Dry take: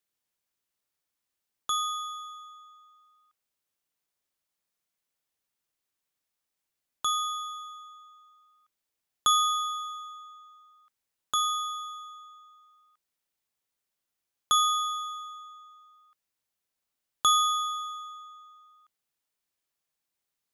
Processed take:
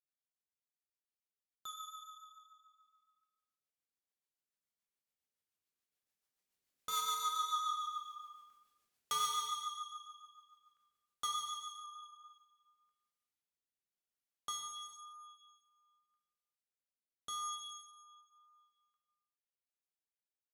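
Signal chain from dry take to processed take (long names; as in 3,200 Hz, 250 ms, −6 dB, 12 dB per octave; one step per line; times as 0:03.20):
source passing by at 0:07.69, 8 m/s, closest 2.2 metres
in parallel at −1 dB: speech leveller within 5 dB 0.5 s
on the sum: soft clipping −38.5 dBFS, distortion −7 dB
rotating-speaker cabinet horn 7 Hz, later 0.9 Hz, at 0:11.62
reverb whose tail is shaped and stops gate 470 ms falling, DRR 3 dB
level +7.5 dB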